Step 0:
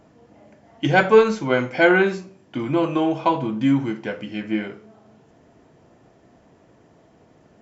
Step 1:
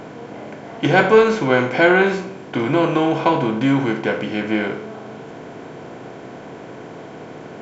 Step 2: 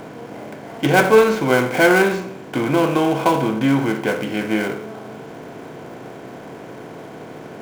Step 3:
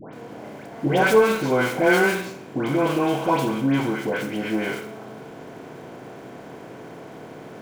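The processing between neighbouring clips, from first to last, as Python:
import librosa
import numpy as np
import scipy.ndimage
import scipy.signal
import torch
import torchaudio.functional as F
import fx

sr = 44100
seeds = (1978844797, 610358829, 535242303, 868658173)

y1 = fx.bin_compress(x, sr, power=0.6)
y2 = fx.dead_time(y1, sr, dead_ms=0.066)
y3 = fx.dispersion(y2, sr, late='highs', ms=134.0, hz=1500.0)
y3 = y3 * 10.0 ** (-4.0 / 20.0)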